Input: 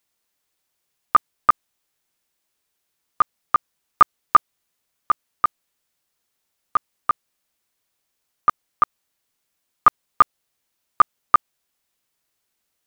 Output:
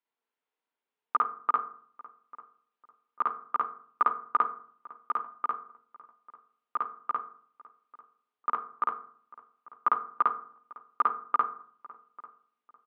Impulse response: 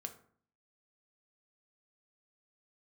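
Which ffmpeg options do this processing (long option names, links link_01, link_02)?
-filter_complex "[0:a]agate=range=-8dB:threshold=-13dB:ratio=16:detection=peak,acompressor=threshold=-20dB:ratio=6,highpass=250,equalizer=frequency=250:width_type=q:width=4:gain=7,equalizer=frequency=440:width_type=q:width=4:gain=6,equalizer=frequency=930:width_type=q:width=4:gain=8,equalizer=frequency=1400:width_type=q:width=4:gain=3,lowpass=frequency=3300:width=0.5412,lowpass=frequency=3300:width=1.3066,asplit=2[link_01][link_02];[link_02]adelay=844,lowpass=frequency=1700:poles=1,volume=-20dB,asplit=2[link_03][link_04];[link_04]adelay=844,lowpass=frequency=1700:poles=1,volume=0.31[link_05];[link_01][link_03][link_05]amix=inputs=3:normalize=0,asplit=2[link_06][link_07];[1:a]atrim=start_sample=2205,adelay=52[link_08];[link_07][link_08]afir=irnorm=-1:irlink=0,volume=5dB[link_09];[link_06][link_09]amix=inputs=2:normalize=0,volume=-6.5dB"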